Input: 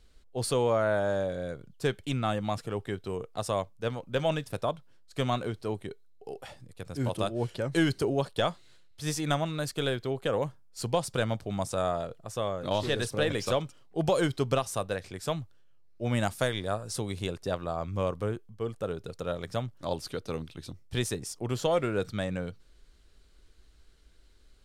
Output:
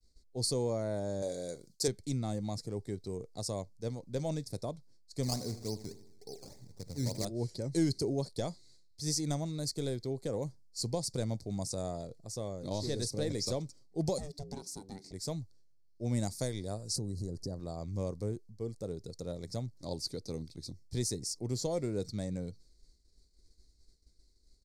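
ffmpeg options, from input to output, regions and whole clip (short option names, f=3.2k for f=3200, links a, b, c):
-filter_complex "[0:a]asettb=1/sr,asplit=3[a][b][c];[a]atrim=end=1.224[d];[b]atrim=start=1.22:end=1.88,asetpts=PTS-STARTPTS,afade=t=in:d=0.004:c=qsin,afade=t=out:st=0.656:d=0.004:c=qsin,bass=f=250:g=-14,treble=f=4k:g=8,acontrast=30,asplit=2[e][f];[f]adelay=40,volume=-14dB[g];[e][g]amix=inputs=2:normalize=0,atrim=end_sample=29106[h];[c]atrim=start=1.876[i];[d][h]acrossfade=d=0.004:c1=hsin:c2=qsin[j];[j][i]acrossfade=d=0.004:c1=qsin:c2=hsin,asettb=1/sr,asplit=3[k][l][m];[k]atrim=end=5.234[n];[l]atrim=start=5.23:end=7.25,asetpts=PTS-STARTPTS,afade=t=in:d=0.004:c=qsin,afade=t=out:st=2.016:d=0.004:c=qsin,equalizer=f=350:w=5.6:g=-5,aecho=1:1:79|158|237|316|395|474:0.2|0.112|0.0626|0.035|0.0196|0.011,atrim=end_sample=89082,acrusher=samples=16:mix=1:aa=0.000001:lfo=1:lforange=16:lforate=3.5[o];[m]atrim=start=7.246[p];[n][o]acrossfade=d=0.004:c1=hsin:c2=qsin[q];[q][p]acrossfade=d=0.004:c1=qsin:c2=hsin,asettb=1/sr,asplit=3[r][s][t];[r]atrim=end=14.184[u];[s]atrim=start=14.18:end=15.13,asetpts=PTS-STARTPTS,afade=t=in:d=0.004:c=qsin,afade=t=out:st=0.946:d=0.004:c=qsin,acompressor=threshold=-42dB:ratio=1.5:attack=3.2:release=140:knee=1:detection=peak,aeval=exprs='val(0)*sin(2*PI*290*n/s)':c=same[v];[t]atrim=start=15.126[w];[u][v]acrossfade=d=0.004:c1=hsin:c2=qsin[x];[x][w]acrossfade=d=0.004:c1=qsin:c2=hsin,asettb=1/sr,asplit=3[y][z][aa];[y]atrim=end=16.964[ab];[z]atrim=start=16.96:end=17.6,asetpts=PTS-STARTPTS,afade=t=in:d=0.004:c=qsin,afade=t=out:st=0.636:d=0.004:c=qsin,lowshelf=f=400:g=9.5,acompressor=threshold=-32dB:ratio=3:attack=3.2:release=140:knee=1:detection=peak,asuperstop=centerf=2800:order=12:qfactor=1.3[ac];[aa]atrim=start=17.596[ad];[ab][ac]acrossfade=d=0.004:c1=hsin:c2=qsin[ae];[ae][ad]acrossfade=d=0.004:c1=qsin:c2=hsin,firequalizer=gain_entry='entry(310,0);entry(600,-6);entry(890,-8);entry(1300,-14);entry(2000,2);entry(2900,-20);entry(4400,9);entry(13000,-3)':delay=0.05:min_phase=1,agate=range=-33dB:threshold=-52dB:ratio=3:detection=peak,equalizer=f=1.8k:t=o:w=0.81:g=-12,volume=-3dB"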